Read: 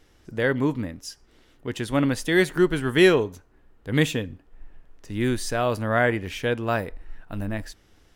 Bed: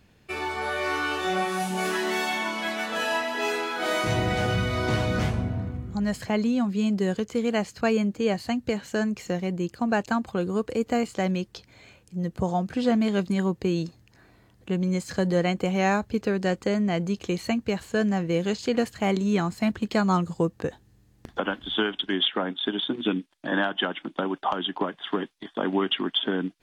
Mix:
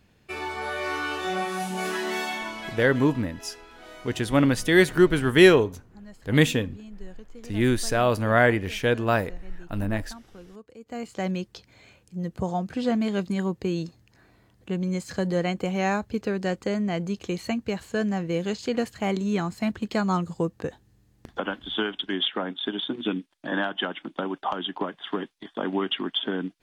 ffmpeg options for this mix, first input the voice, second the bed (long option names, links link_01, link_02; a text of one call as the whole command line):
ffmpeg -i stem1.wav -i stem2.wav -filter_complex "[0:a]adelay=2400,volume=2dB[link_01];[1:a]volume=15.5dB,afade=type=out:start_time=2.18:duration=0.93:silence=0.133352,afade=type=in:start_time=10.83:duration=0.45:silence=0.133352[link_02];[link_01][link_02]amix=inputs=2:normalize=0" out.wav